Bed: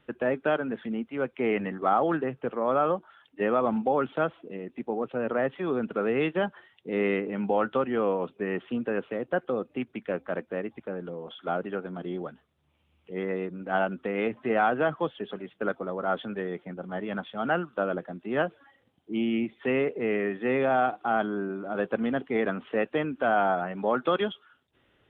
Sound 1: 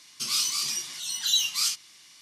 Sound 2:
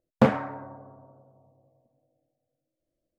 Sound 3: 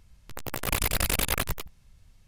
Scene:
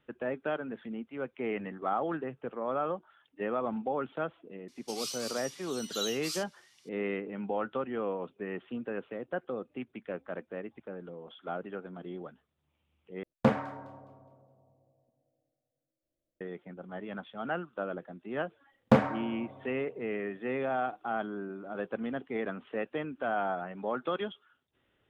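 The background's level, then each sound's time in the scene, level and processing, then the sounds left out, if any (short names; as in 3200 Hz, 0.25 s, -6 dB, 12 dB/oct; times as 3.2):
bed -7.5 dB
4.68 add 1 -12.5 dB
13.23 replace with 2 -5.5 dB + thin delay 0.207 s, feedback 35%, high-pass 3300 Hz, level -17 dB
18.7 add 2 -2.5 dB
not used: 3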